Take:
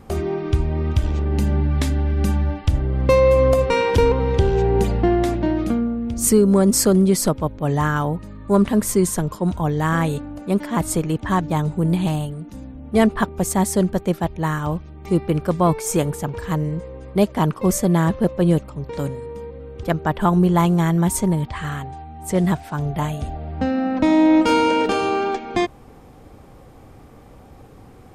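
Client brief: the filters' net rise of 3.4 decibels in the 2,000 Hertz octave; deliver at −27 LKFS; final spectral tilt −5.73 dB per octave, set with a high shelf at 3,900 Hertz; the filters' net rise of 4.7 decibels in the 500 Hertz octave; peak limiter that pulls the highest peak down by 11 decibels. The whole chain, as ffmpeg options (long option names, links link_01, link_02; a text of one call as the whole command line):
ffmpeg -i in.wav -af "equalizer=frequency=500:width_type=o:gain=5.5,equalizer=frequency=2000:width_type=o:gain=6,highshelf=frequency=3900:gain=-8.5,volume=-4.5dB,alimiter=limit=-17dB:level=0:latency=1" out.wav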